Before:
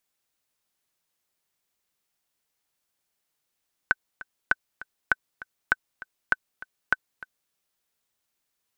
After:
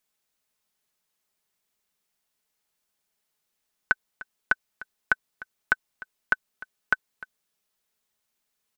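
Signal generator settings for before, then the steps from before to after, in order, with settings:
metronome 199 bpm, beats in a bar 2, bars 6, 1520 Hz, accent 19 dB -6 dBFS
comb 4.7 ms, depth 35%

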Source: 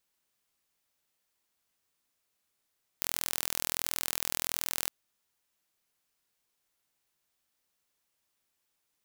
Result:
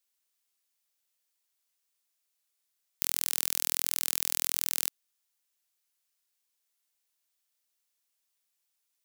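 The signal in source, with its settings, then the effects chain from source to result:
pulse train 41.4/s, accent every 0, -4 dBFS 1.86 s
HPF 280 Hz 12 dB/oct; high shelf 2300 Hz +10.5 dB; level quantiser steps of 16 dB

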